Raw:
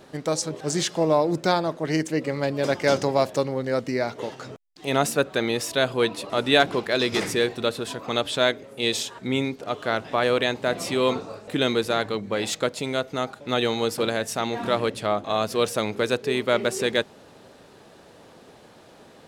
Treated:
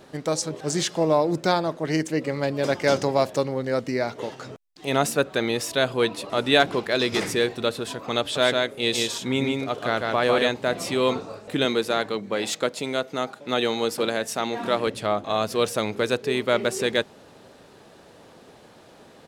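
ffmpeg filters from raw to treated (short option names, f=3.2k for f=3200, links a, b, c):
-filter_complex "[0:a]asplit=3[a][b][c];[a]afade=t=out:st=8.35:d=0.02[d];[b]aecho=1:1:151:0.708,afade=t=in:st=8.35:d=0.02,afade=t=out:st=10.47:d=0.02[e];[c]afade=t=in:st=10.47:d=0.02[f];[d][e][f]amix=inputs=3:normalize=0,asettb=1/sr,asplit=3[g][h][i];[g]atrim=end=11.654[j];[h]atrim=start=11.65:end=14.87,asetpts=PTS-STARTPTS,afade=t=in:d=0.004:c=qsin,afade=t=out:st=3.216:d=0.004:c=qsin,highpass=160[k];[i]atrim=start=14.866[l];[j][k]acrossfade=d=0.004:c1=hsin:c2=qsin[m];[m][l]acrossfade=d=0.004:c1=qsin:c2=hsin"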